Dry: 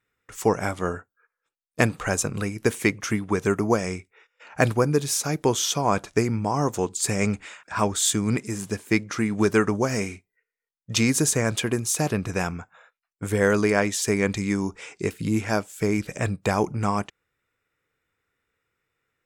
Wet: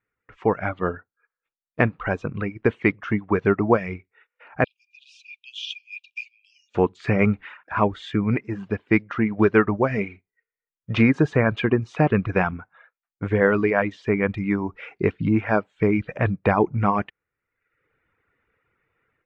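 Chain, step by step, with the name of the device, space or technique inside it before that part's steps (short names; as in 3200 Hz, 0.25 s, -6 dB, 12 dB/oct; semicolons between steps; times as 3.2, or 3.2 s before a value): 4.64–6.75 Chebyshev high-pass 2400 Hz, order 10; reverb removal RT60 0.78 s; action camera in a waterproof case (LPF 2500 Hz 24 dB/oct; AGC gain up to 13 dB; gain -3.5 dB; AAC 64 kbps 24000 Hz)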